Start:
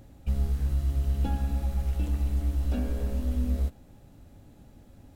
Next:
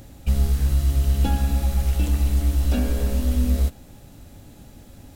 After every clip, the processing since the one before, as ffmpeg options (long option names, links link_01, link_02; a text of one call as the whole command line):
ffmpeg -i in.wav -af "highshelf=frequency=2300:gain=8.5,volume=7dB" out.wav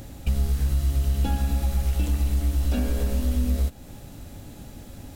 ffmpeg -i in.wav -af "acompressor=threshold=-28dB:ratio=2,volume=3.5dB" out.wav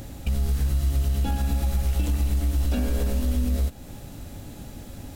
ffmpeg -i in.wav -af "alimiter=limit=-18dB:level=0:latency=1:release=44,volume=2dB" out.wav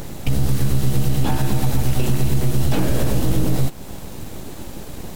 ffmpeg -i in.wav -af "aeval=exprs='abs(val(0))':channel_layout=same,volume=8.5dB" out.wav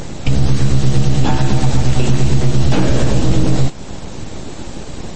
ffmpeg -i in.wav -af "volume=6dB" -ar 24000 -c:a libmp3lame -b:a 32k out.mp3